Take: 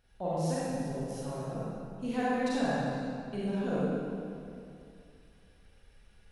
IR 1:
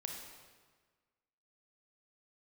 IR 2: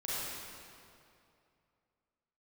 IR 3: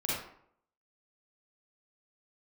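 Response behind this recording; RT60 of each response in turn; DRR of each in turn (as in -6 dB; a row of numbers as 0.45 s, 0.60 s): 2; 1.5 s, 2.6 s, 0.65 s; 1.0 dB, -9.5 dB, -7.0 dB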